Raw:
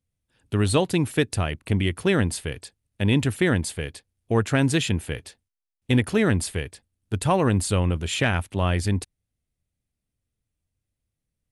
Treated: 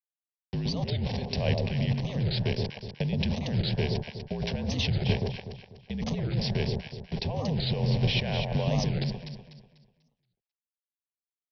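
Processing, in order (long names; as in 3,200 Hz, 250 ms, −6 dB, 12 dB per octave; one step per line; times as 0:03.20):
hold until the input has moved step −30 dBFS
high-pass filter 120 Hz
compressor whose output falls as the input rises −29 dBFS, ratio −1
low-shelf EQ 310 Hz +8.5 dB
phaser with its sweep stopped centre 360 Hz, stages 6
delay that swaps between a low-pass and a high-pass 123 ms, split 1,000 Hz, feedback 57%, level −2 dB
frequency shifter −52 Hz
Chebyshev low-pass filter 5,600 Hz, order 10
wow of a warped record 45 rpm, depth 250 cents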